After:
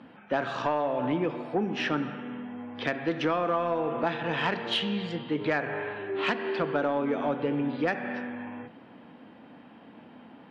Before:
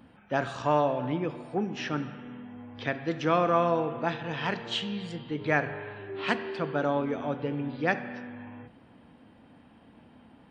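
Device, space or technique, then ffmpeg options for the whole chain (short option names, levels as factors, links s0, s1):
AM radio: -af "highpass=190,lowpass=3800,acompressor=threshold=0.0398:ratio=10,asoftclip=type=tanh:threshold=0.075,volume=2.11"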